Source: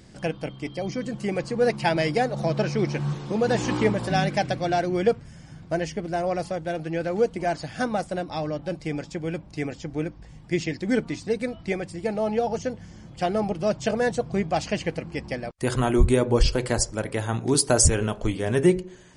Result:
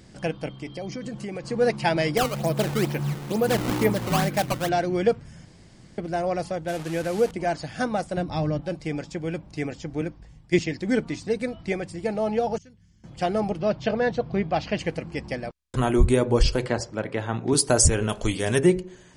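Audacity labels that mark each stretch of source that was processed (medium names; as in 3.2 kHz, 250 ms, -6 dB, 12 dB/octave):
0.540000	1.500000	compression, threshold -29 dBFS
2.170000	4.690000	decimation with a swept rate 15×, swing 160% 2.2 Hz
5.450000	5.980000	room tone
6.680000	7.310000	one-bit delta coder 64 kbps, step -32.5 dBFS
8.170000	8.610000	tone controls bass +9 dB, treble -1 dB
10.010000	10.590000	three bands expanded up and down depth 70%
12.580000	13.040000	amplifier tone stack bass-middle-treble 6-0-2
13.590000	14.790000	low-pass 4.6 kHz 24 dB/octave
15.530000	15.530000	stutter in place 0.03 s, 7 plays
16.660000	17.530000	band-pass 110–3700 Hz
18.090000	18.590000	treble shelf 2.5 kHz +11 dB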